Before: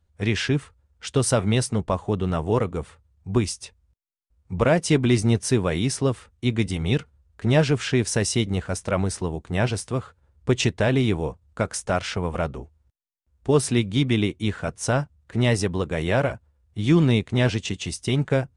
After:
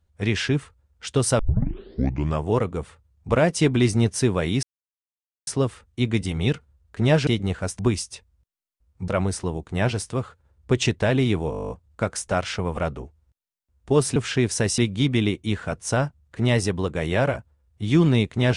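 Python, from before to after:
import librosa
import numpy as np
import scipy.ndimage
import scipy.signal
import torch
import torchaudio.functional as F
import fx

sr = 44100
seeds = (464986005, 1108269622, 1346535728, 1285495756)

y = fx.edit(x, sr, fx.tape_start(start_s=1.39, length_s=1.05),
    fx.move(start_s=3.29, length_s=1.29, to_s=8.86),
    fx.insert_silence(at_s=5.92, length_s=0.84),
    fx.move(start_s=7.72, length_s=0.62, to_s=13.74),
    fx.stutter(start_s=11.28, slice_s=0.02, count=11), tone=tone)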